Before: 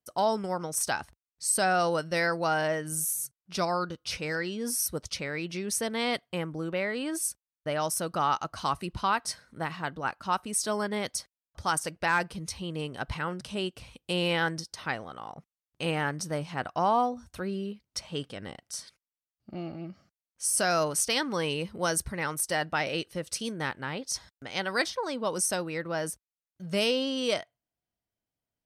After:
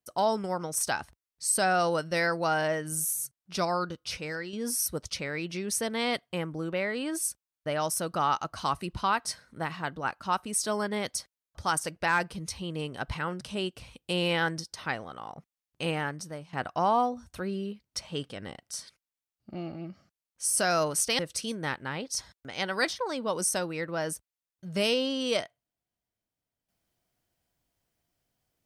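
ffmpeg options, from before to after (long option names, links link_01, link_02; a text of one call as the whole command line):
ffmpeg -i in.wav -filter_complex "[0:a]asplit=4[link_01][link_02][link_03][link_04];[link_01]atrim=end=4.53,asetpts=PTS-STARTPTS,afade=type=out:start_time=3.92:duration=0.61:silence=0.473151[link_05];[link_02]atrim=start=4.53:end=16.53,asetpts=PTS-STARTPTS,afade=type=in:duration=0.004:curve=hsin:silence=0.473151,afade=type=out:start_time=11.3:duration=0.7:silence=0.188365[link_06];[link_03]atrim=start=16.53:end=21.192,asetpts=PTS-STARTPTS,afade=type=in:duration=0.004:curve=hsin:silence=0.188365[link_07];[link_04]atrim=start=23.158[link_08];[link_05][link_06][link_07]concat=n=3:v=0:a=1[link_09];[link_09][link_08]acrossfade=duration=0.004:curve1=hsin:curve2=hsin" out.wav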